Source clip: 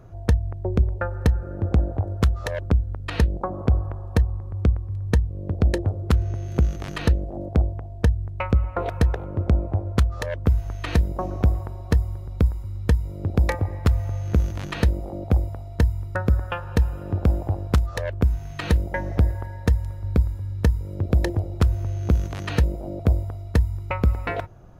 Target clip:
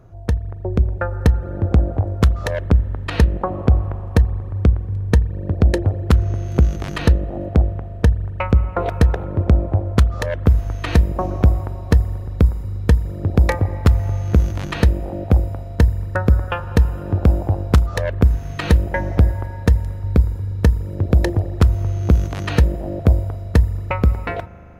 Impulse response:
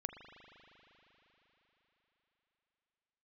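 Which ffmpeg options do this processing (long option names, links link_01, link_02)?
-filter_complex "[0:a]dynaudnorm=framelen=170:gausssize=9:maxgain=11.5dB,asplit=2[link_01][link_02];[1:a]atrim=start_sample=2205,highshelf=frequency=2600:gain=-10.5[link_03];[link_02][link_03]afir=irnorm=-1:irlink=0,volume=-8dB[link_04];[link_01][link_04]amix=inputs=2:normalize=0,volume=-2.5dB"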